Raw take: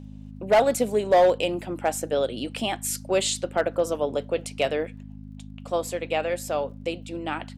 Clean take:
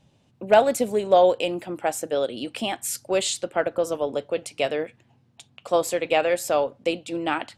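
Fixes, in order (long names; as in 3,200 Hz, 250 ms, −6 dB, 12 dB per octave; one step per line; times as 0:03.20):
clipped peaks rebuilt −12.5 dBFS
click removal
hum removal 51.6 Hz, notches 5
level 0 dB, from 0:05.03 +5 dB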